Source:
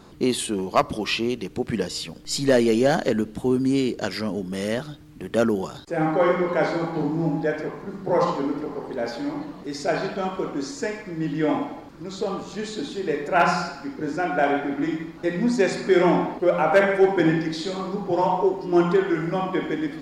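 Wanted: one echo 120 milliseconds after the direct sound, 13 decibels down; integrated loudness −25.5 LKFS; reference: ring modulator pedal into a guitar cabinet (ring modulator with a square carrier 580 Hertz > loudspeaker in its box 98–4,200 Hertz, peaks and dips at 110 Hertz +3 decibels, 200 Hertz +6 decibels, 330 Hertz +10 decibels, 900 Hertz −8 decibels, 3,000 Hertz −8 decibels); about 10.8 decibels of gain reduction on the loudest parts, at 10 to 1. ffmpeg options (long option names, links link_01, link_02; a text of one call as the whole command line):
ffmpeg -i in.wav -af "acompressor=threshold=-24dB:ratio=10,aecho=1:1:120:0.224,aeval=exprs='val(0)*sgn(sin(2*PI*580*n/s))':channel_layout=same,highpass=98,equalizer=frequency=110:width_type=q:width=4:gain=3,equalizer=frequency=200:width_type=q:width=4:gain=6,equalizer=frequency=330:width_type=q:width=4:gain=10,equalizer=frequency=900:width_type=q:width=4:gain=-8,equalizer=frequency=3000:width_type=q:width=4:gain=-8,lowpass=frequency=4200:width=0.5412,lowpass=frequency=4200:width=1.3066,volume=3dB" out.wav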